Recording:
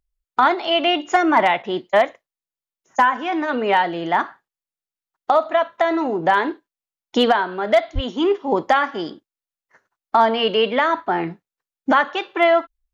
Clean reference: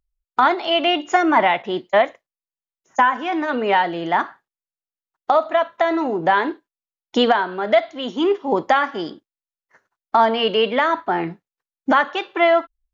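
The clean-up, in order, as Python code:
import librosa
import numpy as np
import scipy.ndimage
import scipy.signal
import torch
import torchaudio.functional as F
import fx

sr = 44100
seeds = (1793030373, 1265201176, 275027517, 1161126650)

y = fx.fix_declip(x, sr, threshold_db=-6.5)
y = fx.highpass(y, sr, hz=140.0, slope=24, at=(7.94, 8.06), fade=0.02)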